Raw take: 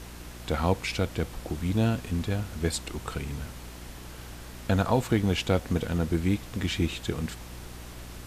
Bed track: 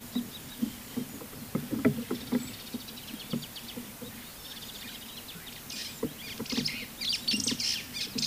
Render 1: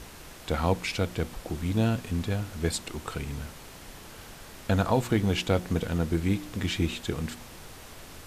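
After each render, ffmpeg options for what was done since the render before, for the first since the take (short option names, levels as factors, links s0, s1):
-af "bandreject=f=60:t=h:w=4,bandreject=f=120:t=h:w=4,bandreject=f=180:t=h:w=4,bandreject=f=240:t=h:w=4,bandreject=f=300:t=h:w=4,bandreject=f=360:t=h:w=4"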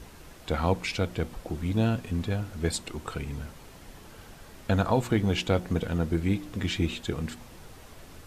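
-af "afftdn=nr=6:nf=-46"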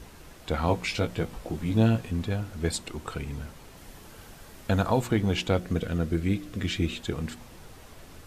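-filter_complex "[0:a]asettb=1/sr,asplit=3[s0][s1][s2];[s0]atrim=end=0.664[s3];[s1]atrim=start=0.66:end=2.07,asetpts=PTS-STARTPTS,afade=t=in:d=0.004:c=qsin,afade=t=out:st=1.406:d=0.004:c=qsin,asplit=2[s4][s5];[s5]adelay=18,volume=0.562[s6];[s4][s6]amix=inputs=2:normalize=0,atrim=end_sample=62181[s7];[s2]atrim=start=2.066[s8];[s3][s7]acrossfade=d=0.004:c1=hsin:c2=qsin[s9];[s9][s8]acrossfade=d=0.004:c1=qsin:c2=hsin,asettb=1/sr,asplit=3[s10][s11][s12];[s10]atrim=end=3.774[s13];[s11]atrim=start=3.77:end=5.06,asetpts=PTS-STARTPTS,afade=t=in:d=0.004:c=qsin,afade=t=out:st=1.286:d=0.004:c=qsin,highshelf=f=7400:g=5[s14];[s12]atrim=start=5.056[s15];[s13][s14]acrossfade=d=0.004:c1=hsin:c2=qsin[s16];[s16][s15]acrossfade=d=0.004:c1=qsin:c2=hsin,asettb=1/sr,asplit=3[s17][s18][s19];[s17]atrim=end=5.574[s20];[s18]atrim=start=5.57:end=6.96,asetpts=PTS-STARTPTS,afade=t=in:d=0.004:c=qsin,afade=t=out:st=1.386:d=0.004:c=qsin,equalizer=f=880:t=o:w=0.29:g=-10.5[s21];[s19]atrim=start=6.956[s22];[s20][s21]acrossfade=d=0.004:c1=hsin:c2=qsin[s23];[s23][s22]acrossfade=d=0.004:c1=qsin:c2=hsin"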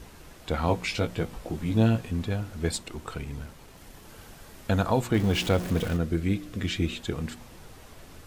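-filter_complex "[0:a]asettb=1/sr,asplit=3[s0][s1][s2];[s0]atrim=end=2.764[s3];[s1]atrim=start=2.76:end=4.09,asetpts=PTS-STARTPTS,afade=t=in:d=0.004:c=qsin,afade=t=out:st=1.326:d=0.004:c=qsin,aeval=exprs='if(lt(val(0),0),0.708*val(0),val(0))':c=same[s4];[s2]atrim=start=4.086[s5];[s3][s4]acrossfade=d=0.004:c1=hsin:c2=qsin[s6];[s6][s5]acrossfade=d=0.004:c1=qsin:c2=hsin,asettb=1/sr,asplit=3[s7][s8][s9];[s7]atrim=end=5.144[s10];[s8]atrim=start=5.14:end=5.97,asetpts=PTS-STARTPTS,afade=t=in:d=0.004:c=qsin,afade=t=out:st=0.826:d=0.004:c=qsin,aeval=exprs='val(0)+0.5*0.0266*sgn(val(0))':c=same[s11];[s9]atrim=start=5.966[s12];[s10][s11]acrossfade=d=0.004:c1=hsin:c2=qsin[s13];[s13][s12]acrossfade=d=0.004:c1=qsin:c2=hsin"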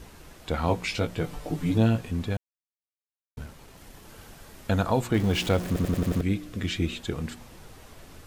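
-filter_complex "[0:a]asettb=1/sr,asplit=3[s0][s1][s2];[s0]atrim=end=1.234[s3];[s1]atrim=start=1.23:end=1.78,asetpts=PTS-STARTPTS,afade=t=in:d=0.004:c=qsin,afade=t=out:st=0.546:d=0.004:c=qsin,aecho=1:1:6.8:0.84,atrim=end_sample=24255[s4];[s2]atrim=start=1.776[s5];[s3][s4]acrossfade=d=0.004:c1=hsin:c2=qsin[s6];[s6][s5]acrossfade=d=0.004:c1=qsin:c2=hsin,asplit=9[s7][s8][s9][s10][s11][s12][s13][s14][s15];[s7]atrim=end=2.37,asetpts=PTS-STARTPTS,afade=t=out:st=2.366:d=0.004:c=hsin[s16];[s8]atrim=start=2.37:end=3.37,asetpts=PTS-STARTPTS,volume=0[s17];[s9]atrim=start=3.37:end=5.762,asetpts=PTS-STARTPTS,afade=t=in:d=0.004:c=hsin[s18];[s10]atrim=start=5.668:end=5.762[s19];[s11]atrim=start=5.668:end=5.762[s20];[s12]atrim=start=5.668:end=5.762[s21];[s13]atrim=start=5.668:end=5.762[s22];[s14]atrim=start=5.668:end=5.762[s23];[s15]atrim=start=6.208[s24];[s16][s17][s18]concat=n=3:v=0:a=1[s25];[s25][s19]acrossfade=d=0.004:c1=hsin:c2=hsin[s26];[s26][s20]acrossfade=d=0.004:c1=hsin:c2=hsin[s27];[s27][s21]acrossfade=d=0.004:c1=hsin:c2=hsin[s28];[s28][s22]acrossfade=d=0.004:c1=hsin:c2=hsin[s29];[s29][s23]acrossfade=d=0.004:c1=hsin:c2=hsin[s30];[s30][s24]acrossfade=d=0.004:c1=hsin:c2=hsin"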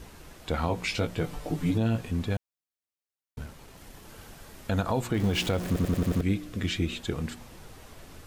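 -af "alimiter=limit=0.141:level=0:latency=1:release=75"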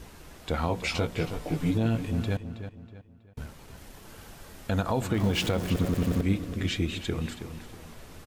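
-filter_complex "[0:a]asplit=2[s0][s1];[s1]adelay=322,lowpass=f=4200:p=1,volume=0.316,asplit=2[s2][s3];[s3]adelay=322,lowpass=f=4200:p=1,volume=0.38,asplit=2[s4][s5];[s5]adelay=322,lowpass=f=4200:p=1,volume=0.38,asplit=2[s6][s7];[s7]adelay=322,lowpass=f=4200:p=1,volume=0.38[s8];[s0][s2][s4][s6][s8]amix=inputs=5:normalize=0"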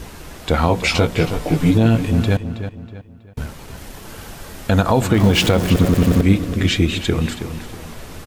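-af "volume=3.98"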